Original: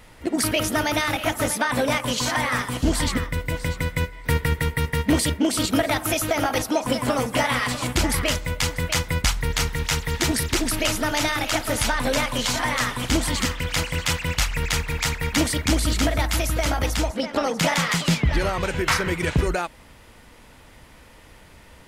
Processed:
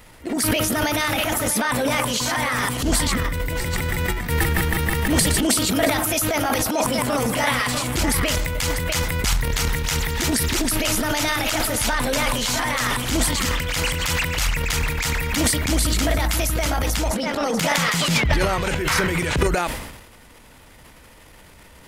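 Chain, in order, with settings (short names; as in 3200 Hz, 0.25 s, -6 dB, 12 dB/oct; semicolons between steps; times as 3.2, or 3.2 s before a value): high shelf 9800 Hz +7.5 dB; 3.47–5.47 frequency-shifting echo 0.117 s, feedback 32%, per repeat -130 Hz, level -8.5 dB; transient shaper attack -5 dB, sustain +11 dB; sustainer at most 57 dB/s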